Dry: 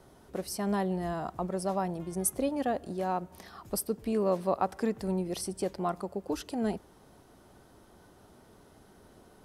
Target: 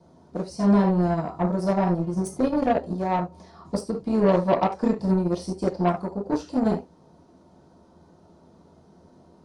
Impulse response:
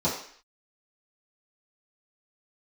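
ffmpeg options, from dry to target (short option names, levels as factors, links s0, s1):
-filter_complex "[0:a]aresample=22050,aresample=44100[s0];[1:a]atrim=start_sample=2205,atrim=end_sample=4410[s1];[s0][s1]afir=irnorm=-1:irlink=0,aeval=exprs='0.841*(cos(1*acos(clip(val(0)/0.841,-1,1)))-cos(1*PI/2))+0.0596*(cos(7*acos(clip(val(0)/0.841,-1,1)))-cos(7*PI/2))':c=same,volume=0.473"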